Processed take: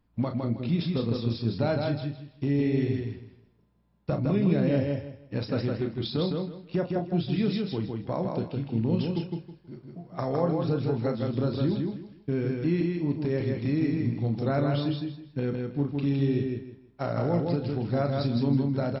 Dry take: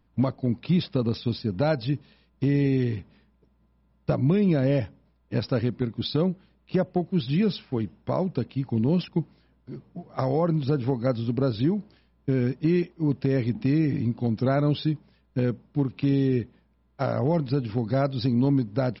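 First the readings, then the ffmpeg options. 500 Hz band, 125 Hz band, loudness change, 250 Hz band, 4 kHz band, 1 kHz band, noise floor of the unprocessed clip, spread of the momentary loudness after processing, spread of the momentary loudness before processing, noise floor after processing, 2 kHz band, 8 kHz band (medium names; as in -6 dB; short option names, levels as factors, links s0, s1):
-2.0 dB, -2.5 dB, -2.5 dB, -2.5 dB, -2.0 dB, -2.0 dB, -65 dBFS, 9 LU, 8 LU, -61 dBFS, -2.0 dB, no reading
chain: -filter_complex "[0:a]flanger=delay=9.7:depth=1:regen=-87:speed=0.26:shape=triangular,asplit=2[s0][s1];[s1]adelay=35,volume=0.422[s2];[s0][s2]amix=inputs=2:normalize=0,aecho=1:1:160|320|480|640:0.668|0.167|0.0418|0.0104"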